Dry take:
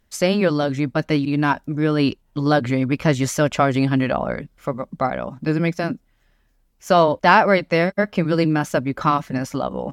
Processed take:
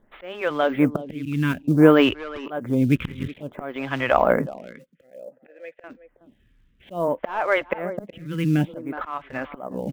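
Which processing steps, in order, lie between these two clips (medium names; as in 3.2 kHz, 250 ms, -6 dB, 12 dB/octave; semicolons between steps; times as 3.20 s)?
2.95–3.42 s: cycle switcher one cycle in 3, muted; steep low-pass 3.6 kHz 96 dB/octave; de-esser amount 75%; 4.55–5.84 s: vowel filter e; in parallel at -8 dB: short-mantissa float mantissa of 2-bit; on the sum: slow attack 771 ms; speakerphone echo 370 ms, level -14 dB; lamp-driven phase shifter 0.57 Hz; trim +6 dB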